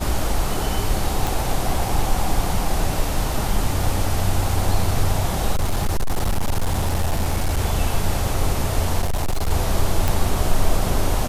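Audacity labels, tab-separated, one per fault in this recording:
1.270000	1.270000	pop
5.520000	7.590000	clipped -15.5 dBFS
9.010000	9.510000	clipped -17 dBFS
10.080000	10.080000	pop

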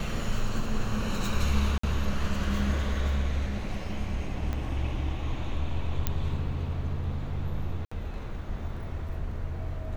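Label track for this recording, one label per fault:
1.780000	1.830000	gap 54 ms
4.530000	4.530000	pop -20 dBFS
6.070000	6.070000	pop -12 dBFS
7.850000	7.920000	gap 65 ms

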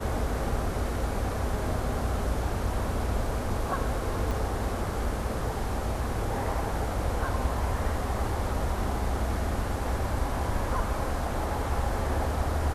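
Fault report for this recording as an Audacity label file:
4.310000	4.310000	gap 2.2 ms

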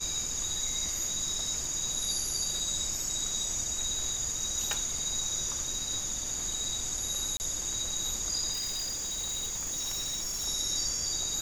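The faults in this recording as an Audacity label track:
1.650000	1.650000	gap 2.3 ms
4.730000	4.730000	pop
7.370000	7.400000	gap 29 ms
8.520000	10.470000	clipped -30.5 dBFS

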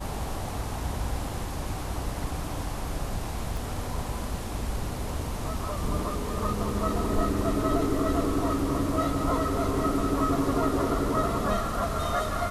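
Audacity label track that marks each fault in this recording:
3.570000	3.570000	pop

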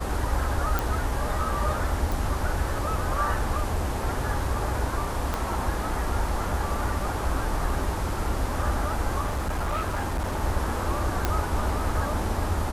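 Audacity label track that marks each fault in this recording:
0.790000	0.790000	pop
2.120000	2.120000	pop
5.340000	5.340000	pop -13 dBFS
9.250000	10.430000	clipped -23.5 dBFS
11.250000	11.250000	pop -9 dBFS

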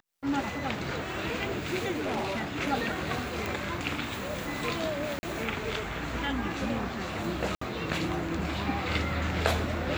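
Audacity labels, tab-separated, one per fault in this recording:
1.910000	2.530000	clipped -27.5 dBFS
3.460000	3.460000	pop
5.190000	5.230000	gap 40 ms
7.550000	7.610000	gap 64 ms

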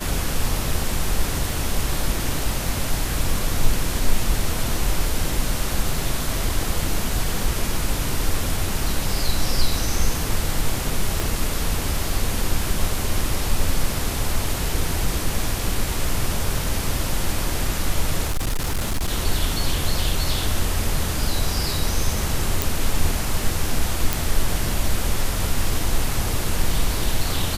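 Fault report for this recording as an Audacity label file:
11.200000	11.200000	pop
18.260000	19.090000	clipped -18.5 dBFS
22.620000	22.620000	pop
24.130000	24.130000	pop

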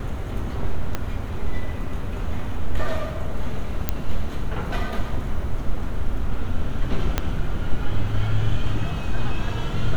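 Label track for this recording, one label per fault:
0.950000	0.950000	pop -10 dBFS
3.890000	3.890000	pop -7 dBFS
7.180000	7.180000	pop -6 dBFS

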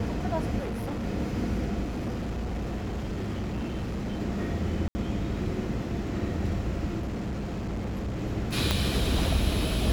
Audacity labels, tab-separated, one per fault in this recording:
0.580000	1.050000	clipped -29 dBFS
1.830000	4.210000	clipped -28 dBFS
4.880000	4.950000	gap 70 ms
6.990000	8.220000	clipped -28.5 dBFS
8.710000	8.710000	pop -9 dBFS

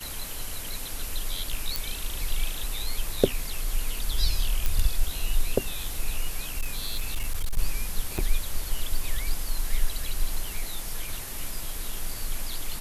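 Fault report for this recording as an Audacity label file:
1.760000	1.760000	pop
4.660000	4.660000	pop
6.490000	7.590000	clipped -22 dBFS
8.180000	8.190000	gap 6.1 ms

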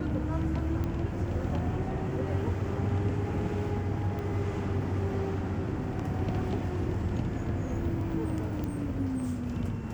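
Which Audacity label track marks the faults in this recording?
0.840000	0.840000	pop -22 dBFS
4.190000	4.190000	pop -26 dBFS
8.640000	8.640000	pop -23 dBFS

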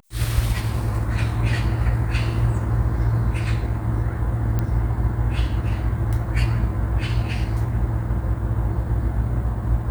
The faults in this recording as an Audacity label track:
4.590000	4.590000	pop -12 dBFS

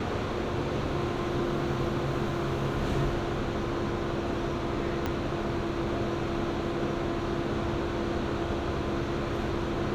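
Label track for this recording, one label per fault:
5.060000	5.060000	pop -16 dBFS

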